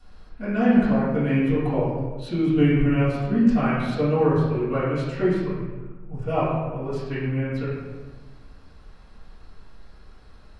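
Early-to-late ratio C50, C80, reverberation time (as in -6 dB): -1.0 dB, 2.0 dB, 1.2 s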